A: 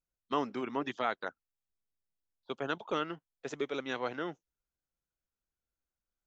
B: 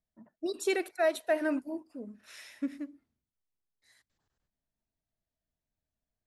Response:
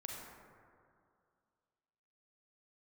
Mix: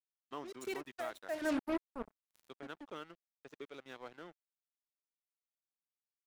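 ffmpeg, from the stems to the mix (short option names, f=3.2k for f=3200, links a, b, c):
-filter_complex "[0:a]aeval=exprs='sgn(val(0))*max(abs(val(0))-0.00501,0)':c=same,volume=-12.5dB,asplit=2[a][b];[1:a]highshelf=f=9.6k:g=-3,acrossover=split=290[c][d];[c]acompressor=threshold=-45dB:ratio=3[e];[e][d]amix=inputs=2:normalize=0,acrusher=bits=5:mix=0:aa=0.5,volume=2dB[f];[b]apad=whole_len=276233[g];[f][g]sidechaincompress=threshold=-60dB:ratio=8:attack=16:release=295[h];[a][h]amix=inputs=2:normalize=0"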